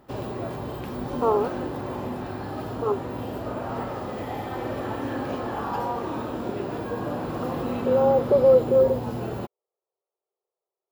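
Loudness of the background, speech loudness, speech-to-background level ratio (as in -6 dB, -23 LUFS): -31.0 LUFS, -22.0 LUFS, 9.0 dB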